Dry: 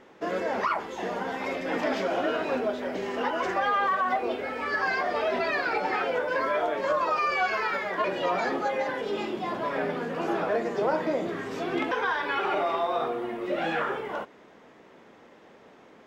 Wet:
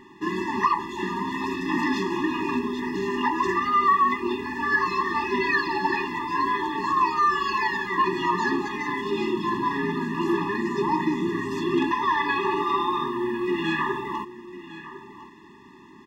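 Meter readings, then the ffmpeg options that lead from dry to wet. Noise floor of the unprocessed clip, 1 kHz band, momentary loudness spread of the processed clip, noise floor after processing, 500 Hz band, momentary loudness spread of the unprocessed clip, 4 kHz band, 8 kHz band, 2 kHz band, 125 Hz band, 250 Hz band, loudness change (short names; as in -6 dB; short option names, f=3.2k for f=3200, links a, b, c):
-54 dBFS, +4.5 dB, 7 LU, -48 dBFS, -2.0 dB, 6 LU, +3.0 dB, n/a, +3.0 dB, +7.5 dB, +7.5 dB, +3.5 dB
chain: -af "aecho=1:1:1053:0.168,afftfilt=real='re*eq(mod(floor(b*sr/1024/410),2),0)':imag='im*eq(mod(floor(b*sr/1024/410),2),0)':win_size=1024:overlap=0.75,volume=7.5dB"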